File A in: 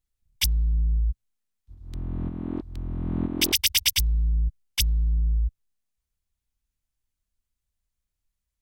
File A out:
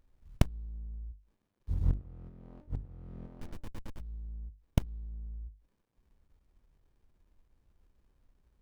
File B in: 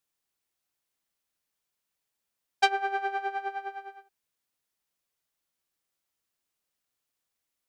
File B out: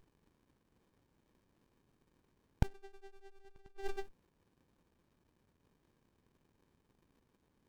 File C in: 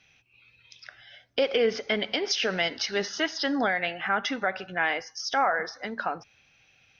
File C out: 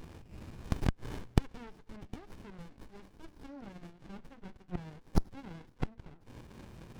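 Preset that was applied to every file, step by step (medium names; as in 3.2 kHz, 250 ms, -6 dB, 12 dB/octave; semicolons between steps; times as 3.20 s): inverted gate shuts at -30 dBFS, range -34 dB; hum notches 50/100/150/200/250/300 Hz; sliding maximum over 65 samples; trim +16.5 dB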